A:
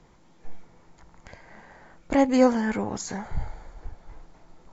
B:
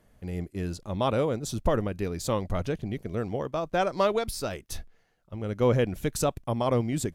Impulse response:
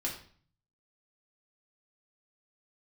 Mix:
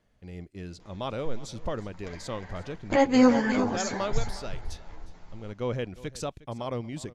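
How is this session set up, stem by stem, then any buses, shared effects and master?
+2.5 dB, 0.80 s, no send, echo send −9.5 dB, multi-voice chorus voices 2, 0.61 Hz, delay 10 ms, depth 3.1 ms
−8.0 dB, 0.00 s, no send, echo send −19 dB, no processing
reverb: not used
echo: single-tap delay 359 ms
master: low-pass filter 4,600 Hz 12 dB per octave; high-shelf EQ 3,300 Hz +10 dB

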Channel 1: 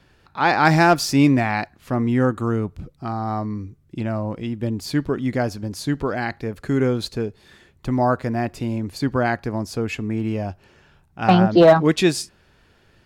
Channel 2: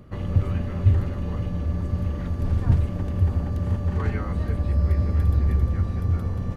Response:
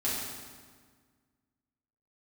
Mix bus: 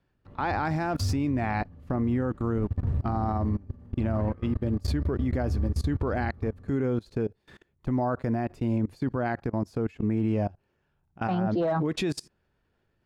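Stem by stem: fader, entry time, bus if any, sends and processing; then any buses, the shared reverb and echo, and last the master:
+2.5 dB, 0.00 s, no send, no processing
−8.5 dB, 0.15 s, send −8 dB, pitch vibrato 4.9 Hz 18 cents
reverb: on, RT60 1.6 s, pre-delay 4 ms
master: output level in coarse steps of 24 dB; high-shelf EQ 2,100 Hz −10 dB; brickwall limiter −19 dBFS, peak gain reduction 5 dB

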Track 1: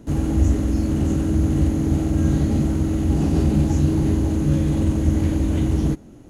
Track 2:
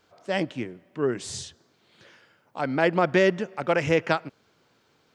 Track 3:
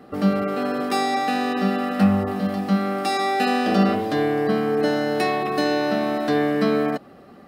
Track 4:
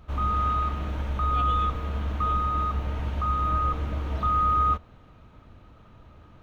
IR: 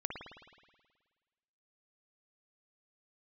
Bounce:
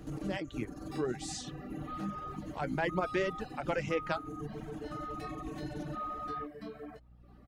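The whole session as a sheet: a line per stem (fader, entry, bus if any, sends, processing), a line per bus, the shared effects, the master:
−12.5 dB, 0.00 s, bus B, no send, compressor whose output falls as the input rises −22 dBFS, ratio −0.5; automatic ducking −8 dB, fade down 1.00 s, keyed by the second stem
0.0 dB, 0.00 s, bus A, no send, automatic gain control gain up to 5 dB; flanger 0.61 Hz, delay 1.8 ms, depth 9.8 ms, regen +55%
−15.5 dB, 0.00 s, bus A, no send, upward compression, threshold −34 dBFS; micro pitch shift up and down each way 29 cents
−18.0 dB, 1.70 s, bus B, no send, no processing
bus A: 0.0 dB, mains hum 60 Hz, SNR 25 dB; downward compressor 1.5 to 1, threshold −46 dBFS, peak gain reduction 11 dB
bus B: 0.0 dB, comb filter 6.5 ms, depth 98%; brickwall limiter −31.5 dBFS, peak gain reduction 13 dB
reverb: not used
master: reverb reduction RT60 0.93 s

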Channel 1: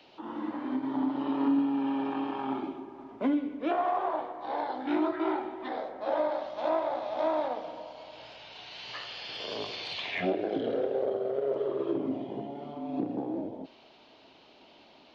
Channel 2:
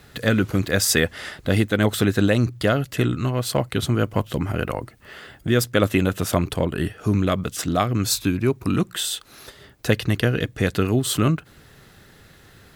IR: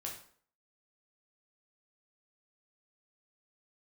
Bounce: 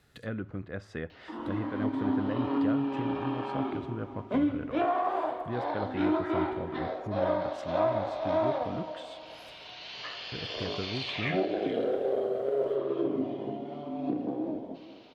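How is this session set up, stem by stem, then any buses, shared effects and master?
−2.5 dB, 1.10 s, send −3.5 dB, echo send −13 dB, notch filter 850 Hz, Q 12
−17.0 dB, 0.00 s, muted 0:09.76–0:10.32, send −15 dB, no echo send, treble cut that deepens with the level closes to 1,600 Hz, closed at −20 dBFS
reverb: on, RT60 0.55 s, pre-delay 8 ms
echo: single-tap delay 424 ms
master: no processing

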